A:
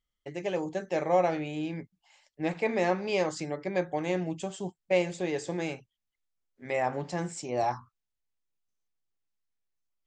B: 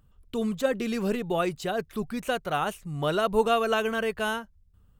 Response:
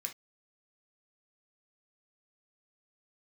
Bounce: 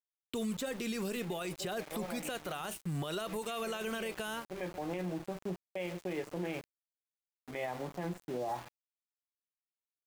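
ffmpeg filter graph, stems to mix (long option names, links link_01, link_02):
-filter_complex "[0:a]afwtdn=0.01,highshelf=frequency=4200:gain=-8.5,adelay=850,volume=0dB,asplit=3[link_01][link_02][link_03];[link_02]volume=-6dB[link_04];[link_03]volume=-21dB[link_05];[1:a]volume=3dB,asplit=3[link_06][link_07][link_08];[link_07]volume=-9dB[link_09];[link_08]apad=whole_len=481547[link_10];[link_01][link_10]sidechaincompress=threshold=-37dB:ratio=8:attack=16:release=445[link_11];[2:a]atrim=start_sample=2205[link_12];[link_04][link_09]amix=inputs=2:normalize=0[link_13];[link_13][link_12]afir=irnorm=-1:irlink=0[link_14];[link_05]aecho=0:1:133|266|399|532|665:1|0.33|0.109|0.0359|0.0119[link_15];[link_11][link_06][link_14][link_15]amix=inputs=4:normalize=0,acrossover=split=100|3500[link_16][link_17][link_18];[link_16]acompressor=threshold=-59dB:ratio=4[link_19];[link_17]acompressor=threshold=-33dB:ratio=4[link_20];[link_18]acompressor=threshold=-40dB:ratio=4[link_21];[link_19][link_20][link_21]amix=inputs=3:normalize=0,aeval=exprs='val(0)*gte(abs(val(0)),0.00631)':channel_layout=same,alimiter=level_in=4.5dB:limit=-24dB:level=0:latency=1:release=27,volume=-4.5dB"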